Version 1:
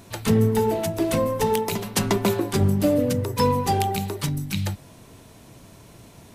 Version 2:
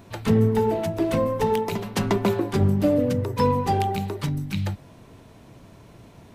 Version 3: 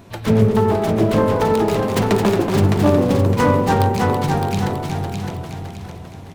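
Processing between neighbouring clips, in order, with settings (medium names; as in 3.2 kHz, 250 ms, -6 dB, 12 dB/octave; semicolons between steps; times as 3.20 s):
peaking EQ 11 kHz -11.5 dB 2.1 oct
self-modulated delay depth 0.28 ms; ever faster or slower copies 100 ms, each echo -1 st, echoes 3, each echo -6 dB; feedback delay 611 ms, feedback 37%, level -5 dB; trim +4 dB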